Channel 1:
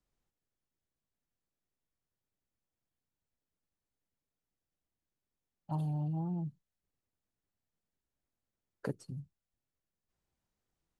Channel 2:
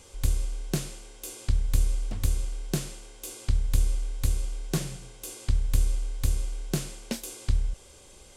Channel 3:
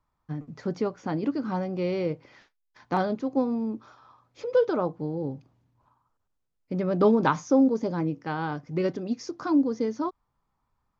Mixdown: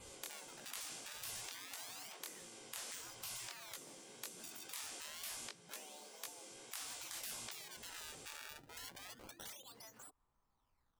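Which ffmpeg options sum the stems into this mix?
-filter_complex "[0:a]volume=-7dB[a];[1:a]adynamicequalizer=threshold=0.00126:dfrequency=5700:dqfactor=6.5:tfrequency=5700:tqfactor=6.5:attack=5:release=100:ratio=0.375:range=2:mode=boostabove:tftype=bell,acompressor=threshold=-31dB:ratio=6,flanger=delay=17:depth=7.5:speed=1.6,volume=1dB[b];[2:a]equalizer=f=150:t=o:w=1.1:g=-5.5,adynamicsmooth=sensitivity=6:basefreq=4k,volume=-4.5dB[c];[a][c]amix=inputs=2:normalize=0,acrusher=samples=24:mix=1:aa=0.000001:lfo=1:lforange=38.4:lforate=0.27,acompressor=threshold=-36dB:ratio=20,volume=0dB[d];[b][d]amix=inputs=2:normalize=0,afftfilt=real='re*lt(hypot(re,im),0.0112)':imag='im*lt(hypot(re,im),0.0112)':win_size=1024:overlap=0.75"

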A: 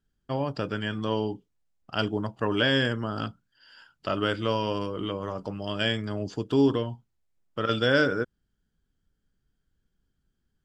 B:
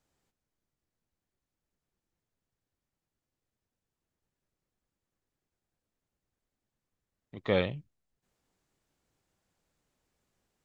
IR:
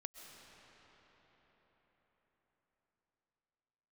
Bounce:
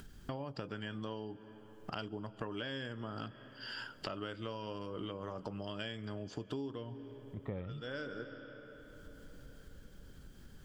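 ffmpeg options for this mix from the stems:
-filter_complex "[0:a]acompressor=mode=upward:threshold=-27dB:ratio=2.5,volume=-5.5dB,asplit=2[a][b];[b]volume=-11.5dB[c];[1:a]lowpass=2.5k,aemphasis=mode=reproduction:type=riaa,volume=-8.5dB,asplit=2[d][e];[e]apad=whole_len=469607[f];[a][f]sidechaincompress=threshold=-51dB:ratio=8:attack=16:release=880[g];[2:a]atrim=start_sample=2205[h];[c][h]afir=irnorm=-1:irlink=0[i];[g][d][i]amix=inputs=3:normalize=0,acompressor=threshold=-37dB:ratio=16"

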